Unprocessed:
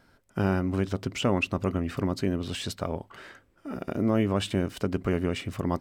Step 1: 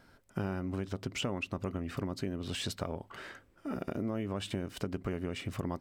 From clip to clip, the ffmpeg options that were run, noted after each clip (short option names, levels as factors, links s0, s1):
-af "acompressor=threshold=0.0251:ratio=6"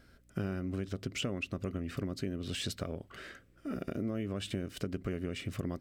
-af "equalizer=f=900:w=2.7:g=-13.5,aeval=exprs='val(0)+0.000562*(sin(2*PI*60*n/s)+sin(2*PI*2*60*n/s)/2+sin(2*PI*3*60*n/s)/3+sin(2*PI*4*60*n/s)/4+sin(2*PI*5*60*n/s)/5)':c=same"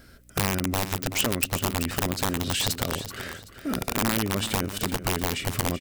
-af "aeval=exprs='(mod(23.7*val(0)+1,2)-1)/23.7':c=same,crystalizer=i=1:c=0,aecho=1:1:381|762|1143:0.266|0.0798|0.0239,volume=2.82"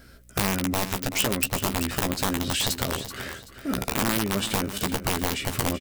-filter_complex "[0:a]asplit=2[s0][s1];[s1]adelay=15,volume=0.447[s2];[s0][s2]amix=inputs=2:normalize=0"